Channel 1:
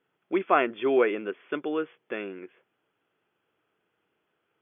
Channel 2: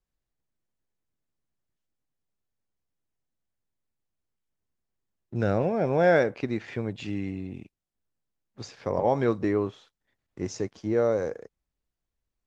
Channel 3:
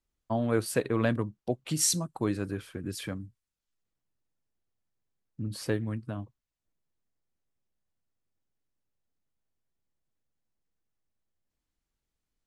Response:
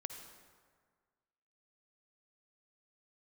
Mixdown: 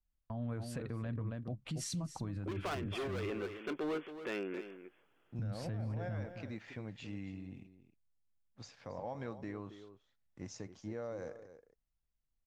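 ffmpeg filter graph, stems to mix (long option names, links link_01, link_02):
-filter_complex "[0:a]alimiter=limit=-12.5dB:level=0:latency=1:release=477,volume=29.5dB,asoftclip=hard,volume=-29.5dB,acompressor=threshold=-36dB:ratio=6,adelay=2150,volume=1.5dB,asplit=2[link_01][link_02];[link_02]volume=-11.5dB[link_03];[1:a]acompressor=threshold=-25dB:ratio=5,volume=-10.5dB,asplit=2[link_04][link_05];[link_05]volume=-15dB[link_06];[2:a]aemphasis=mode=reproduction:type=bsi,agate=range=-10dB:threshold=-56dB:ratio=16:detection=peak,volume=-4dB,asplit=2[link_07][link_08];[link_08]volume=-17.5dB[link_09];[link_04][link_07]amix=inputs=2:normalize=0,equalizer=frequency=390:width_type=o:width=0.44:gain=-10,acompressor=threshold=-31dB:ratio=6,volume=0dB[link_10];[link_03][link_06][link_09]amix=inputs=3:normalize=0,aecho=0:1:274:1[link_11];[link_01][link_10][link_11]amix=inputs=3:normalize=0,alimiter=level_in=8dB:limit=-24dB:level=0:latency=1:release=36,volume=-8dB"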